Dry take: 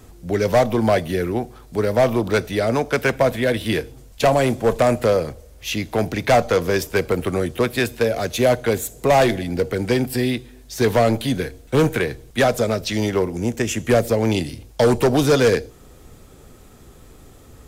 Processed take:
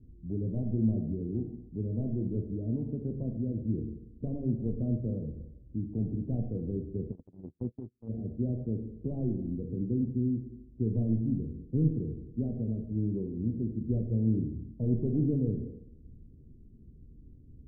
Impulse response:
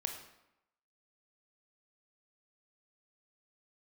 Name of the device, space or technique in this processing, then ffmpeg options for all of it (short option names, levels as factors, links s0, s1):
next room: -filter_complex "[0:a]lowpass=f=280:w=0.5412,lowpass=f=280:w=1.3066[s0];[1:a]atrim=start_sample=2205[s1];[s0][s1]afir=irnorm=-1:irlink=0,asplit=3[s2][s3][s4];[s2]afade=t=out:st=7.11:d=0.02[s5];[s3]agate=range=0.00708:threshold=0.0708:ratio=16:detection=peak,afade=t=in:st=7.11:d=0.02,afade=t=out:st=8.08:d=0.02[s6];[s4]afade=t=in:st=8.08:d=0.02[s7];[s5][s6][s7]amix=inputs=3:normalize=0,volume=0.501"